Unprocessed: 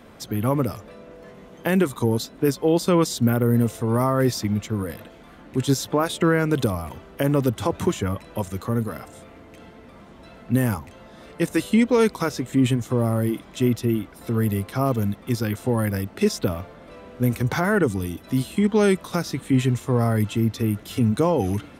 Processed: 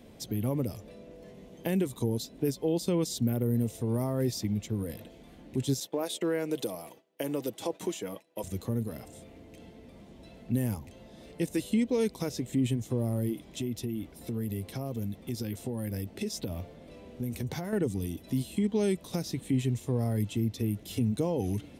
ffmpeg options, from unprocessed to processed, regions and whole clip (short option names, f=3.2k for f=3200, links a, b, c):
-filter_complex "[0:a]asettb=1/sr,asplit=3[a][b][c];[a]atrim=end=5.804[d];[b]atrim=start=5.8:end=8.44,asetpts=PTS-STARTPTS,afade=t=in:d=0.004:c=qsin,afade=t=out:st=2.636:d=0.004:c=qsin,agate=range=-33dB:threshold=-33dB:ratio=3:release=100:detection=peak,highpass=370,aecho=1:1:6.2:0.32,atrim=end_sample=116424[e];[c]atrim=start=8.436[f];[d][e]acrossfade=d=0.004:c1=hsin:c2=qsin[g];[g][f]acrossfade=d=0.004:c1=qsin:c2=hsin,asettb=1/sr,asplit=3[h][i][j];[h]atrim=end=13.334[k];[i]atrim=start=13.33:end=17.73,asetpts=PTS-STARTPTS,afade=t=in:d=0.004:c=qsin,afade=t=out:st=4.396:d=0.004:c=qsin,acompressor=threshold=-26dB:ratio=2.5:attack=3.2:release=140:knee=1:detection=peak,asplit=2[l][m];[m]adelay=13,volume=-14dB[n];[l][n]amix=inputs=2:normalize=0,atrim=end_sample=194040[o];[j]atrim=start=17.726[p];[k][o]acrossfade=d=0.004:c1=hsin:c2=qsin[q];[q][p]acrossfade=d=0.004:c1=qsin:c2=hsin,equalizer=f=1.3k:w=1.3:g=-15,acompressor=threshold=-28dB:ratio=1.5,volume=-3.5dB"